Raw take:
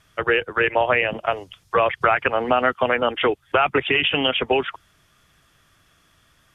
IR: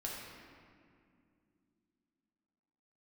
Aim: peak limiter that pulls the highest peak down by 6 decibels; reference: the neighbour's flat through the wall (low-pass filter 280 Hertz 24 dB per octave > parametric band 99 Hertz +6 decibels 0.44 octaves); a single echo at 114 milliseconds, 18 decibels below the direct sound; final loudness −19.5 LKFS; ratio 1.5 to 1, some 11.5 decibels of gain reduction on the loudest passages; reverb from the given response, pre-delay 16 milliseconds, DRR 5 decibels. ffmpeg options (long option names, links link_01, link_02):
-filter_complex "[0:a]acompressor=threshold=-47dB:ratio=1.5,alimiter=limit=-21dB:level=0:latency=1,aecho=1:1:114:0.126,asplit=2[link_01][link_02];[1:a]atrim=start_sample=2205,adelay=16[link_03];[link_02][link_03]afir=irnorm=-1:irlink=0,volume=-6dB[link_04];[link_01][link_04]amix=inputs=2:normalize=0,lowpass=frequency=280:width=0.5412,lowpass=frequency=280:width=1.3066,equalizer=frequency=99:width_type=o:width=0.44:gain=6,volume=26.5dB"